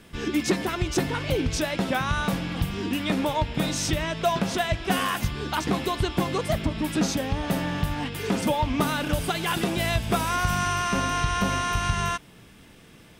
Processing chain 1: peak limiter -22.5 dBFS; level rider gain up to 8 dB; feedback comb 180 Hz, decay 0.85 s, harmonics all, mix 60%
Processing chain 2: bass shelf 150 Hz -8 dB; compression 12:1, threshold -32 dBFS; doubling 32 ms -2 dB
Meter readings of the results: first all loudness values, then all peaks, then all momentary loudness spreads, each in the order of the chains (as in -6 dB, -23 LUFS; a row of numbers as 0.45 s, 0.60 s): -30.5 LUFS, -33.5 LUFS; -19.0 dBFS, -20.0 dBFS; 2 LU, 2 LU